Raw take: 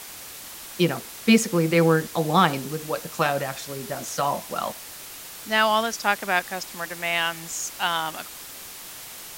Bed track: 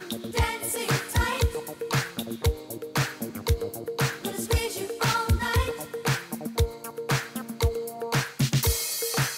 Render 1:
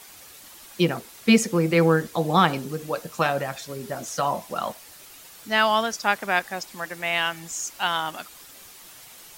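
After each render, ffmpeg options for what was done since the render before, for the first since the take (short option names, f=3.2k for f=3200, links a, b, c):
-af "afftdn=nr=8:nf=-40"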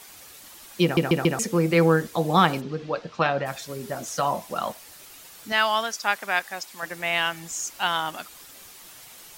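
-filter_complex "[0:a]asplit=3[a][b][c];[a]afade=t=out:st=2.6:d=0.02[d];[b]lowpass=f=4.7k:w=0.5412,lowpass=f=4.7k:w=1.3066,afade=t=in:st=2.6:d=0.02,afade=t=out:st=3.45:d=0.02[e];[c]afade=t=in:st=3.45:d=0.02[f];[d][e][f]amix=inputs=3:normalize=0,asettb=1/sr,asplit=3[g][h][i];[g]atrim=end=5.524[j];[h]atrim=start=5.52:end=6.83,asetpts=PTS-STARTPTS,afade=t=in:d=0.004:c=qsin,afade=t=out:st=1.306:d=0.004:c=qsin,lowshelf=f=480:g=-10.5[k];[i]atrim=start=6.826[l];[j][k]acrossfade=d=0.004:c1=hsin:c2=qsin[m];[m][l]acrossfade=d=0.004:c1=qsin:c2=hsin,asplit=5[n][o][p][q][r];[n]atrim=end=0.972[s];[o]atrim=start=0.828:end=0.972[t];[p]atrim=start=0.828:end=0.972[u];[q]atrim=start=0.828:end=0.972[v];[r]atrim=start=1.388[w];[s][t]acrossfade=d=0.004:c1=hsin:c2=hsin[x];[x][u]acrossfade=d=0.004:c1=hsin:c2=hsin[y];[y][v]acrossfade=d=0.004:c1=hsin:c2=hsin[z];[z][w]acrossfade=d=0.004:c1=hsin:c2=hsin"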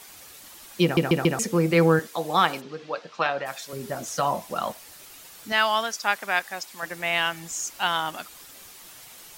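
-filter_complex "[0:a]asettb=1/sr,asplit=3[a][b][c];[a]atrim=end=1.994[d];[b]atrim=start=1.99:end=3.73,asetpts=PTS-STARTPTS,afade=t=in:d=0.004:c=qsin,afade=t=out:st=1.736:d=0.004:c=qsin,highpass=f=600:p=1[e];[c]atrim=start=3.726[f];[d][e]acrossfade=d=0.004:c1=hsin:c2=qsin[g];[g][f]acrossfade=d=0.004:c1=qsin:c2=hsin"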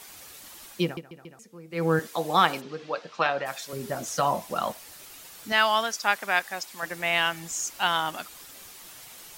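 -filter_complex "[0:a]asplit=3[a][b][c];[a]atrim=end=1.02,asetpts=PTS-STARTPTS,afade=t=out:st=0.66:d=0.36:silence=0.0630957[d];[b]atrim=start=1.02:end=1.7,asetpts=PTS-STARTPTS,volume=-24dB[e];[c]atrim=start=1.7,asetpts=PTS-STARTPTS,afade=t=in:d=0.36:silence=0.0630957[f];[d][e][f]concat=n=3:v=0:a=1"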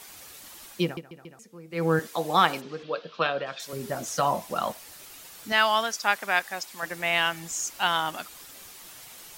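-filter_complex "[0:a]asettb=1/sr,asplit=3[a][b][c];[a]atrim=end=2.834[d];[b]atrim=start=2.83:end=3.6,asetpts=PTS-STARTPTS,afade=t=in:d=0.004:c=qsin,afade=t=out:st=0.766:d=0.004:c=qsin,highpass=110,equalizer=f=160:t=q:w=4:g=4,equalizer=f=460:t=q:w=4:g=4,equalizer=f=830:t=q:w=4:g=-9,equalizer=f=2k:t=q:w=4:g=-7,equalizer=f=3.3k:t=q:w=4:g=5,lowpass=f=4.9k:w=0.5412,lowpass=f=4.9k:w=1.3066[e];[c]atrim=start=3.596[f];[d][e]acrossfade=d=0.004:c1=hsin:c2=qsin[g];[g][f]acrossfade=d=0.004:c1=qsin:c2=hsin"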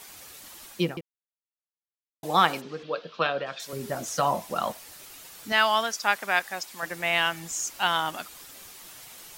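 -filter_complex "[0:a]asplit=3[a][b][c];[a]atrim=end=1.01,asetpts=PTS-STARTPTS,afade=t=out:st=1.006:d=0.004:c=hsin[d];[b]atrim=start=1.01:end=2.23,asetpts=PTS-STARTPTS,volume=0[e];[c]atrim=start=2.23,asetpts=PTS-STARTPTS,afade=t=in:d=0.004:c=hsin[f];[d][e][f]concat=n=3:v=0:a=1"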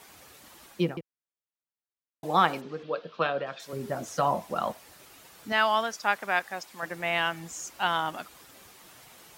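-af "highpass=46,highshelf=f=2.5k:g=-9"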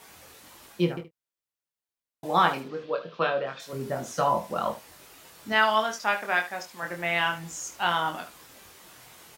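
-filter_complex "[0:a]asplit=2[a][b];[b]adelay=25,volume=-13dB[c];[a][c]amix=inputs=2:normalize=0,aecho=1:1:23|74:0.562|0.237"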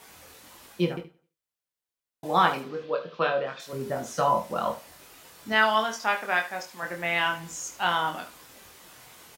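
-filter_complex "[0:a]asplit=2[a][b];[b]adelay=27,volume=-12dB[c];[a][c]amix=inputs=2:normalize=0,aecho=1:1:87|174|261:0.0708|0.0283|0.0113"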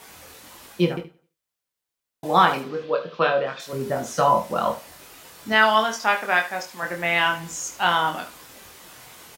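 -af "volume=5dB,alimiter=limit=-3dB:level=0:latency=1"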